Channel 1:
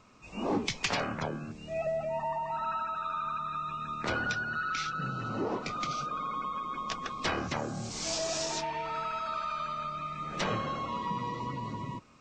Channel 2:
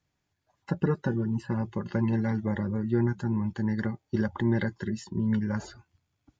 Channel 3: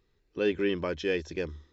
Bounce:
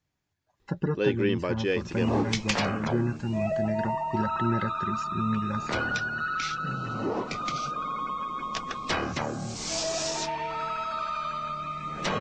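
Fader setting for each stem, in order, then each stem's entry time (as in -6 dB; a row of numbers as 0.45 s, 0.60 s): +3.0 dB, -2.0 dB, +1.5 dB; 1.65 s, 0.00 s, 0.60 s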